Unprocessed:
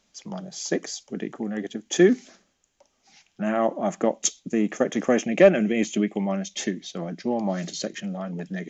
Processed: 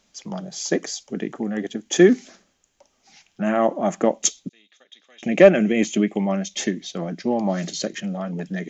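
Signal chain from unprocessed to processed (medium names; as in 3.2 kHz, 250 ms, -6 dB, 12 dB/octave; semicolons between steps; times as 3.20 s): 4.49–5.23 s: band-pass filter 3.7 kHz, Q 13; trim +3.5 dB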